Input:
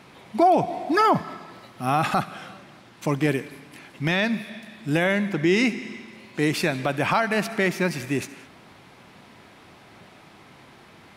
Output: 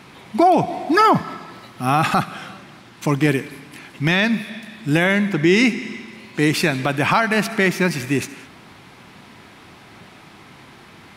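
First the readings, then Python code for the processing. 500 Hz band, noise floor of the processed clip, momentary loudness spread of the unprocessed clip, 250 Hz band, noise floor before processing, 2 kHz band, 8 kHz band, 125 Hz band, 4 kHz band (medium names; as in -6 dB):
+3.5 dB, -45 dBFS, 18 LU, +5.5 dB, -50 dBFS, +6.0 dB, +6.0 dB, +6.0 dB, +6.0 dB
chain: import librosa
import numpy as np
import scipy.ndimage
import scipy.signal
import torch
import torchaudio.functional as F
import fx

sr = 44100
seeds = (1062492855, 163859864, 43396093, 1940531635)

y = fx.peak_eq(x, sr, hz=580.0, db=-4.5, octaves=0.81)
y = y * 10.0 ** (6.0 / 20.0)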